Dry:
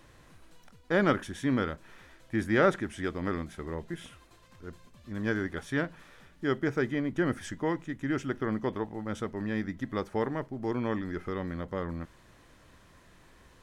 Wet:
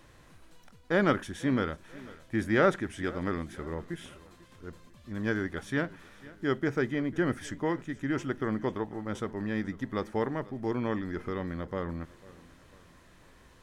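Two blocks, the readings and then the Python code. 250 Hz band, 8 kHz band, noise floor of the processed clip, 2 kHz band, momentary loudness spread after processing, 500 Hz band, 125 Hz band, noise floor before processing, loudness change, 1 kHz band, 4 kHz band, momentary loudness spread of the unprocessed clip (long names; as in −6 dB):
0.0 dB, 0.0 dB, −57 dBFS, 0.0 dB, 15 LU, 0.0 dB, 0.0 dB, −58 dBFS, 0.0 dB, 0.0 dB, 0.0 dB, 13 LU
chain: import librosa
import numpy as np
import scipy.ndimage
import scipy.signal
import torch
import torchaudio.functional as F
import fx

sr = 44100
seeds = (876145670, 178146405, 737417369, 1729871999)

y = fx.echo_feedback(x, sr, ms=495, feedback_pct=44, wet_db=-20.5)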